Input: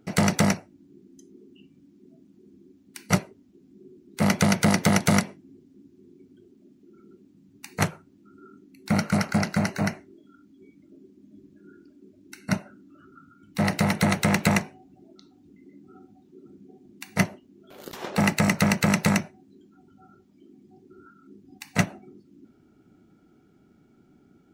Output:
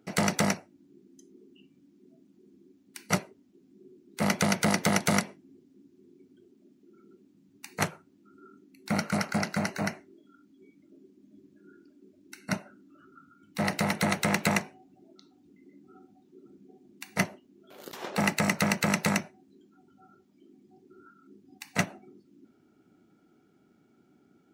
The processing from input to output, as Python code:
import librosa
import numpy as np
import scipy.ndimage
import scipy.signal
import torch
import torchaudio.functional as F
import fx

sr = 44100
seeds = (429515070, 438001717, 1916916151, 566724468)

y = fx.highpass(x, sr, hz=230.0, slope=6)
y = F.gain(torch.from_numpy(y), -2.5).numpy()